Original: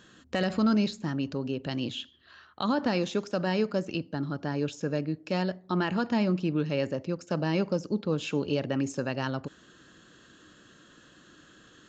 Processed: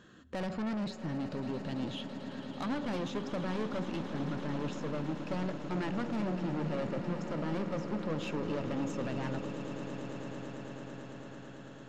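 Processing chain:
high-shelf EQ 2,300 Hz −10 dB
0:04.77–0:05.28: floating-point word with a short mantissa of 6 bits
soft clipping −32.5 dBFS, distortion −6 dB
on a send: echo that builds up and dies away 111 ms, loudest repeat 8, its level −14.5 dB

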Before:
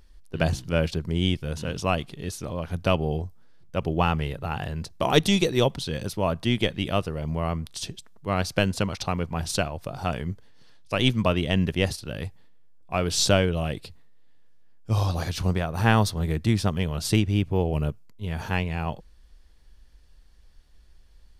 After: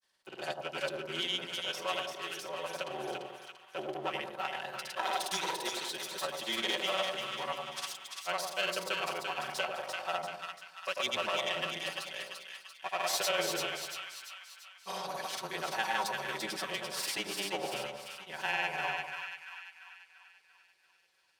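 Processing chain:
lower of the sound and its delayed copy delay 5.2 ms
high-pass filter 700 Hz 12 dB per octave
notch filter 1,200 Hz, Q 21
in parallel at −3 dB: compressor whose output falls as the input rises −29 dBFS
on the sum: granular cloud, pitch spread up and down by 0 semitones
frequency shifter −16 Hz
echo with a time of its own for lows and highs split 1,100 Hz, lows 97 ms, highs 342 ms, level −4 dB
on a send at −23 dB: convolution reverb RT60 0.40 s, pre-delay 114 ms
on the sum: level −8.5 dB

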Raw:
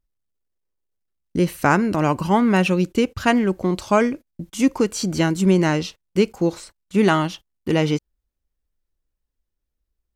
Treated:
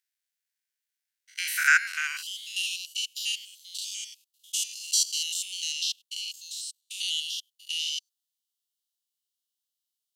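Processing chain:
spectrum averaged block by block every 100 ms
Chebyshev high-pass filter 1,500 Hz, order 6, from 0:02.21 2,900 Hz
level +8.5 dB

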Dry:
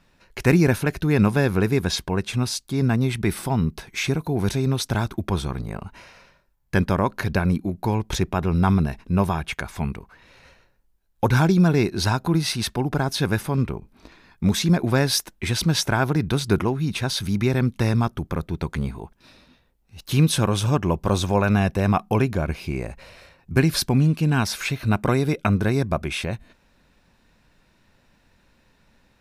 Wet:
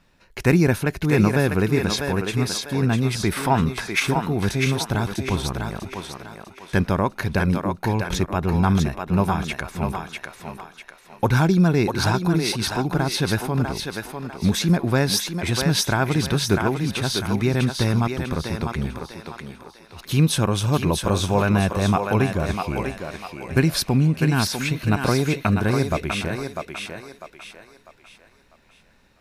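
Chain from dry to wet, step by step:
0:03.32–0:04.00: parametric band 1,500 Hz +12 dB 2.5 octaves
on a send: feedback echo with a high-pass in the loop 648 ms, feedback 39%, high-pass 360 Hz, level −4 dB

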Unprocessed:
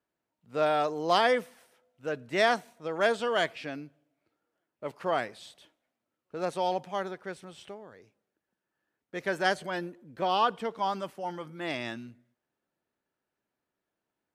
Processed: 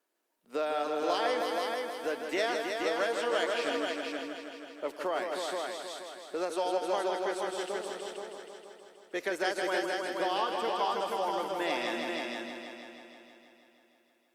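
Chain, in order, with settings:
low-shelf EQ 440 Hz +4.5 dB
downward compressor 6 to 1, threshold −32 dBFS, peak gain reduction 13.5 dB
high-pass filter 290 Hz 24 dB per octave
high-shelf EQ 3,300 Hz +7 dB
echo machine with several playback heads 159 ms, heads all three, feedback 50%, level −6.5 dB
level +2.5 dB
Opus 48 kbit/s 48,000 Hz

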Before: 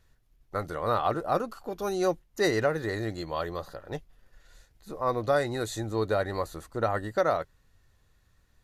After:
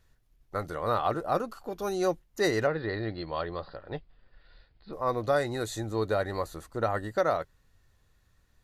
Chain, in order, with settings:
0:02.67–0:04.93: Butterworth low-pass 4,900 Hz 96 dB per octave
level −1 dB

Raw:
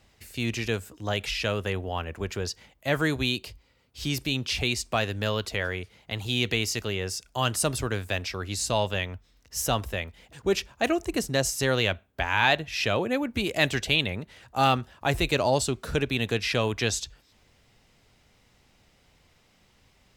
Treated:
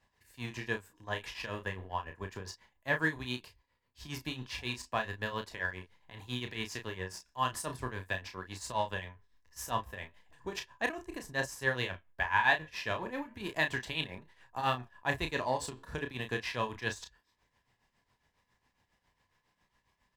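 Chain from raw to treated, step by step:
flanger 0.35 Hz, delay 4.3 ms, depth 9.1 ms, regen −79%
in parallel at −4 dB: slack as between gear wheels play −29 dBFS
on the sum: shaped tremolo triangle 7.3 Hz, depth 85%
double-tracking delay 32 ms −7 dB
hollow resonant body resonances 1,000/1,700 Hz, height 15 dB, ringing for 25 ms
level −8 dB

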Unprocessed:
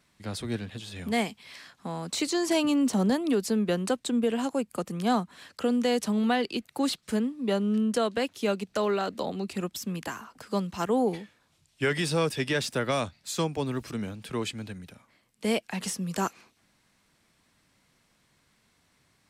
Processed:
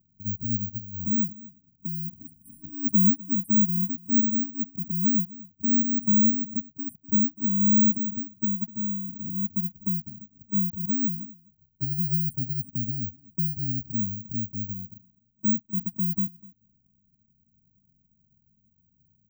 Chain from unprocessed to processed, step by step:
0:08.73–0:10.74: running median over 5 samples
low-pass that shuts in the quiet parts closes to 530 Hz, open at −23.5 dBFS
linear-phase brick-wall band-stop 260–8,100 Hz
tilt shelving filter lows +8.5 dB, about 1,100 Hz
far-end echo of a speakerphone 250 ms, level −14 dB
bad sample-rate conversion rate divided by 2×, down none, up zero stuff
level −4.5 dB

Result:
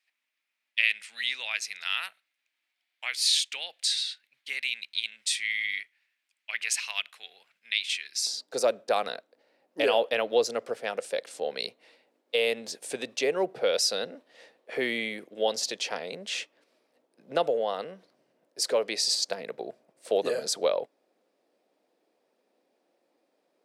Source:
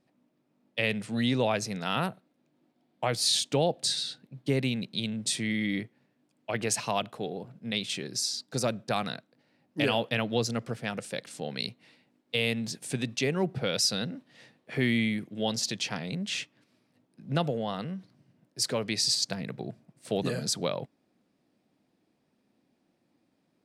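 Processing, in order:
high-pass with resonance 2,200 Hz, resonance Q 2.3, from 0:08.27 490 Hz

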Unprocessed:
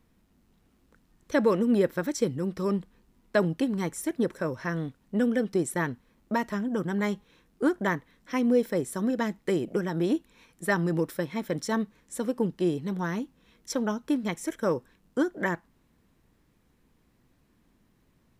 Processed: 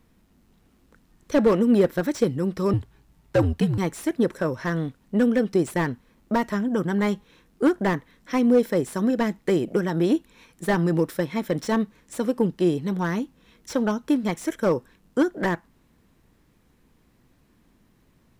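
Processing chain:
0:02.73–0:03.78: frequency shifter −81 Hz
slew-rate limiting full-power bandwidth 60 Hz
level +5 dB

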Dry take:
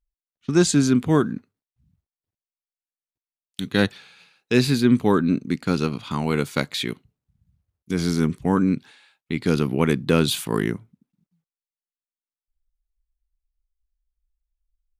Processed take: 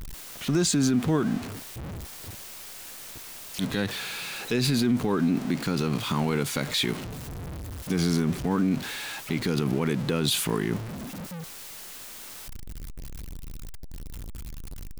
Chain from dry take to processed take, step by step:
converter with a step at zero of −30 dBFS
brickwall limiter −15.5 dBFS, peak gain reduction 10.5 dB

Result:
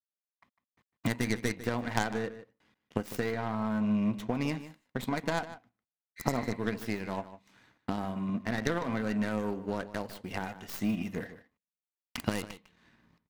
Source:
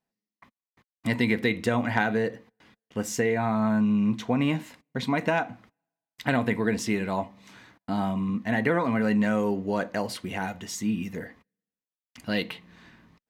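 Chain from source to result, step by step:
stylus tracing distortion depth 0.31 ms
camcorder AGC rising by 14 dB per second
healed spectral selection 0:06.19–0:06.50, 1,400–4,800 Hz after
power curve on the samples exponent 1.4
slap from a distant wall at 26 metres, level −14 dB
level −3 dB

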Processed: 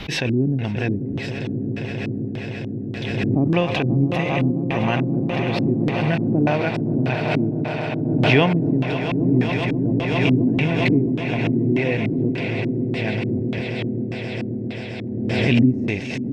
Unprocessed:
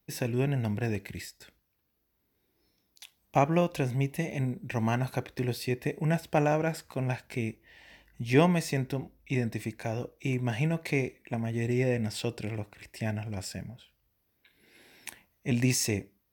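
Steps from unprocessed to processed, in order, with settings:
echo that builds up and dies away 133 ms, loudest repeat 8, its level −12 dB
auto-filter low-pass square 1.7 Hz 290–3,200 Hz
background raised ahead of every attack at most 28 dB per second
level +4.5 dB

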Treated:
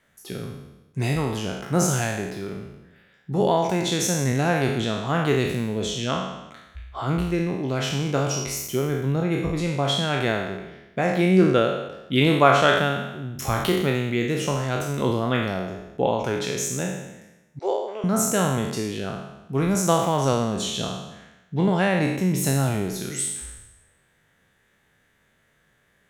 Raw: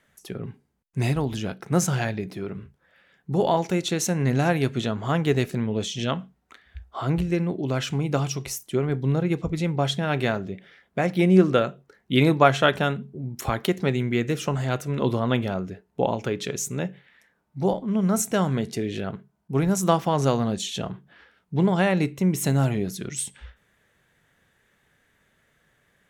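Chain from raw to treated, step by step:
peak hold with a decay on every bin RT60 0.99 s
0:17.59–0:18.04: elliptic band-pass filter 410–7,900 Hz, stop band 40 dB
level −1.5 dB

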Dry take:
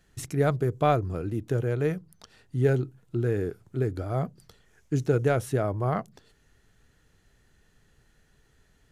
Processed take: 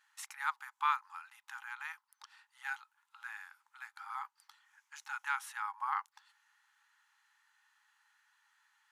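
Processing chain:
linear-phase brick-wall high-pass 800 Hz
high-shelf EQ 2,400 Hz −10.5 dB
level +2.5 dB

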